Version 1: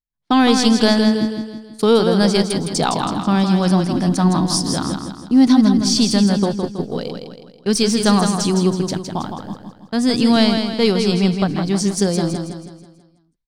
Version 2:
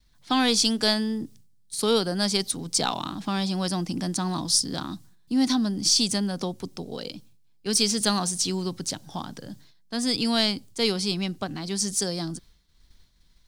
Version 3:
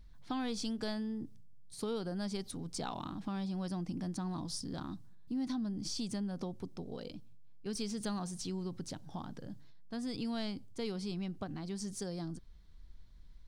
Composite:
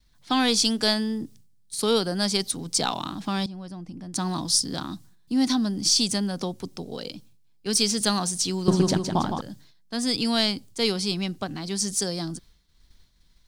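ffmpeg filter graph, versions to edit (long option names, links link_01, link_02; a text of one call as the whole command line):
ffmpeg -i take0.wav -i take1.wav -i take2.wav -filter_complex "[1:a]asplit=3[link_01][link_02][link_03];[link_01]atrim=end=3.462[link_04];[2:a]atrim=start=3.458:end=4.142[link_05];[link_02]atrim=start=4.138:end=8.682[link_06];[0:a]atrim=start=8.678:end=9.412[link_07];[link_03]atrim=start=9.408[link_08];[link_04][link_05]acrossfade=duration=0.004:curve1=hsin:curve2=hsin[link_09];[link_09][link_06]acrossfade=duration=0.004:curve1=hsin:curve2=hsin[link_10];[link_10][link_07]acrossfade=duration=0.004:curve1=hsin:curve2=hsin[link_11];[link_11][link_08]acrossfade=duration=0.004:curve1=hsin:curve2=hsin" out.wav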